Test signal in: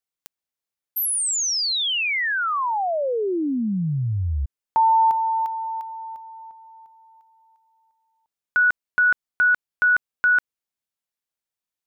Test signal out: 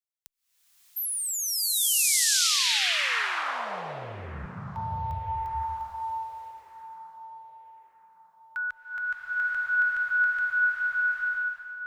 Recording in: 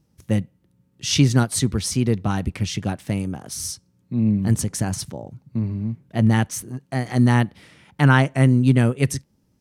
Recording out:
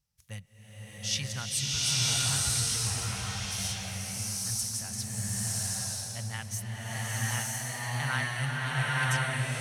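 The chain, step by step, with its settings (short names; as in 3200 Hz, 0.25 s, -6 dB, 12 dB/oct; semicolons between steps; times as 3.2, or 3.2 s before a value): passive tone stack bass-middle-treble 10-0-10; band-limited delay 1.196 s, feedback 37%, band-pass 680 Hz, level -13 dB; bloom reverb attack 0.98 s, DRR -8 dB; gain -7 dB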